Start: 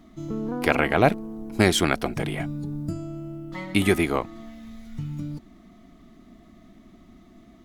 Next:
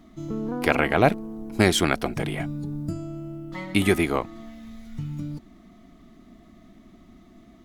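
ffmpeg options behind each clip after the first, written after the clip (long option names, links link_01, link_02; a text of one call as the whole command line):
ffmpeg -i in.wav -af anull out.wav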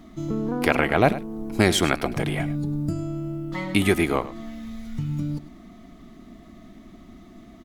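ffmpeg -i in.wav -filter_complex "[0:a]asplit=2[link_01][link_02];[link_02]acompressor=threshold=-30dB:ratio=6,volume=0.5dB[link_03];[link_01][link_03]amix=inputs=2:normalize=0,aecho=1:1:102:0.178,volume=-1.5dB" out.wav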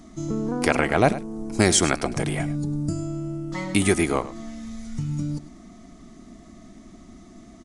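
ffmpeg -i in.wav -af "highshelf=frequency=4600:width_type=q:width=1.5:gain=7.5,aresample=22050,aresample=44100" out.wav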